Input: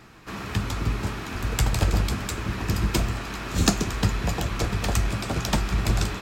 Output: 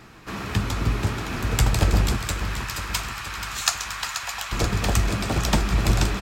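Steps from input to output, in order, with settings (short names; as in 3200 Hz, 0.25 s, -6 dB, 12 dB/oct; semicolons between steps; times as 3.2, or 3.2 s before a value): 2.17–4.52 HPF 910 Hz 24 dB/oct; feedback echo 0.482 s, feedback 55%, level -9.5 dB; gain +2.5 dB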